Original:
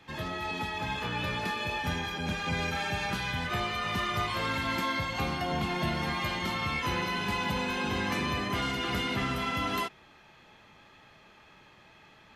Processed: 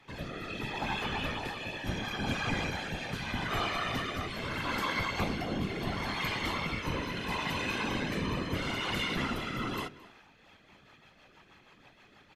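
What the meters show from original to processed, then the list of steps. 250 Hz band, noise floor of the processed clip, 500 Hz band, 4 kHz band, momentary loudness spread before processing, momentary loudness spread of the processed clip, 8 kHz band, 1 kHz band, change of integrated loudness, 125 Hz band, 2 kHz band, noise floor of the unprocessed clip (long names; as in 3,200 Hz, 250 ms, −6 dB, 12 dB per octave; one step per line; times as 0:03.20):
−1.5 dB, −61 dBFS, −2.0 dB, −2.5 dB, 3 LU, 5 LU, −2.5 dB, −4.0 dB, −2.5 dB, −2.0 dB, −2.5 dB, −57 dBFS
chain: rotating-speaker cabinet horn 0.75 Hz, later 6.3 Hz, at 0:09.95
slap from a distant wall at 38 metres, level −18 dB
random phases in short frames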